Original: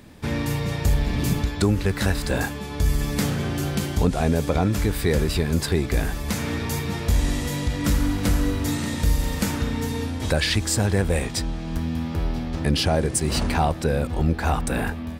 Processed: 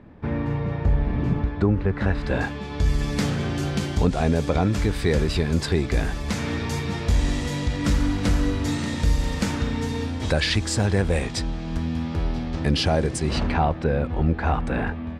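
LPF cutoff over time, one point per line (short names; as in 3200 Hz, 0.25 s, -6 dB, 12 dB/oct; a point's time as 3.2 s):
1.91 s 1500 Hz
2.44 s 3600 Hz
3.14 s 6700 Hz
13.09 s 6700 Hz
13.59 s 2600 Hz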